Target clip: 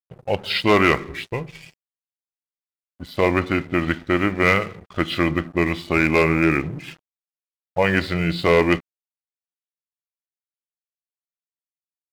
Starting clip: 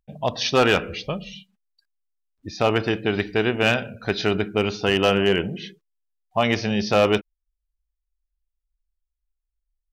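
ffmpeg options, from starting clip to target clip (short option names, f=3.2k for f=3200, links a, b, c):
-af "asetrate=36118,aresample=44100,adynamicequalizer=threshold=0.0158:dfrequency=1900:dqfactor=1.8:tfrequency=1900:tqfactor=1.8:attack=5:release=100:ratio=0.375:range=1.5:mode=boostabove:tftype=bell,aeval=exprs='sgn(val(0))*max(abs(val(0))-0.00891,0)':c=same,volume=1.5dB"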